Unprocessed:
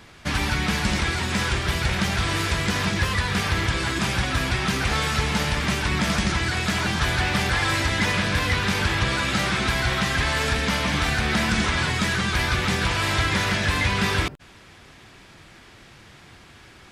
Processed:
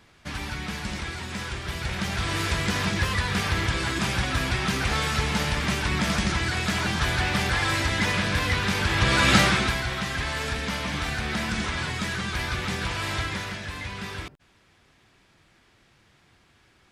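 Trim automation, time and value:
1.57 s -9 dB
2.47 s -2 dB
8.86 s -2 dB
9.34 s +6.5 dB
9.86 s -6 dB
13.18 s -6 dB
13.65 s -12.5 dB

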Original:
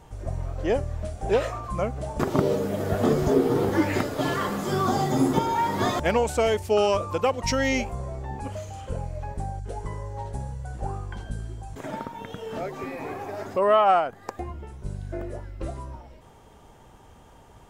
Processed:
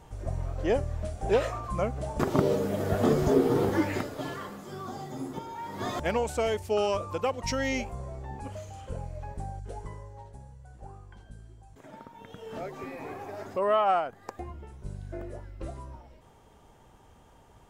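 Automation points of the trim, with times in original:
3.65 s -2 dB
4.66 s -15 dB
5.60 s -15 dB
6.00 s -5.5 dB
9.76 s -5.5 dB
10.36 s -14.5 dB
11.91 s -14.5 dB
12.56 s -5.5 dB

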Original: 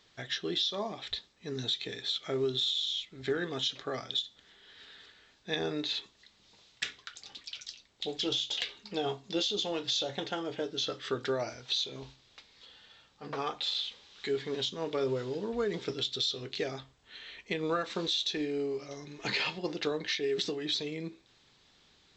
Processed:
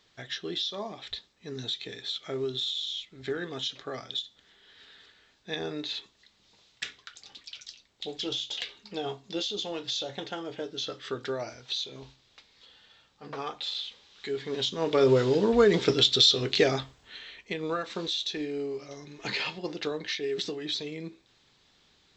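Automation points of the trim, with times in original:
14.31 s -1 dB
15.17 s +11.5 dB
16.78 s +11.5 dB
17.37 s 0 dB

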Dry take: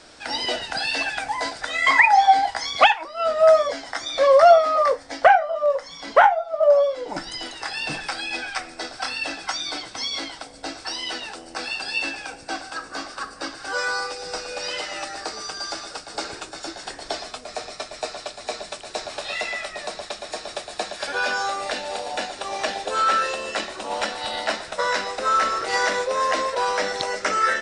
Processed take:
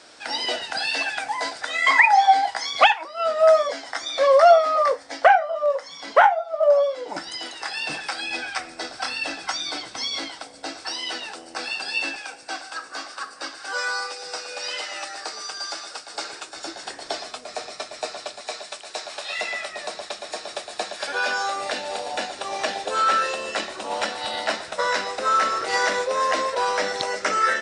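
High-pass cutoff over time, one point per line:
high-pass 6 dB/octave
330 Hz
from 8.21 s 93 Hz
from 10.27 s 230 Hz
from 12.16 s 710 Hz
from 16.57 s 220 Hz
from 18.41 s 740 Hz
from 19.39 s 260 Hz
from 21.56 s 100 Hz

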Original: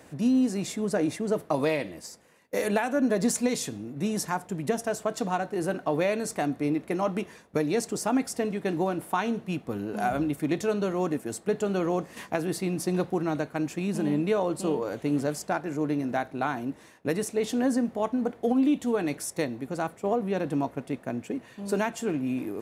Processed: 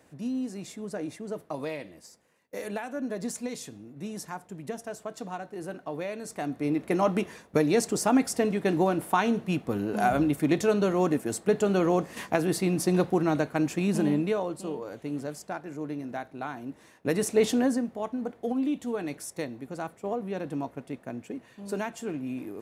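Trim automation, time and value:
6.18 s -8.5 dB
6.94 s +3 dB
13.99 s +3 dB
14.63 s -7 dB
16.59 s -7 dB
17.42 s +5.5 dB
17.90 s -5 dB

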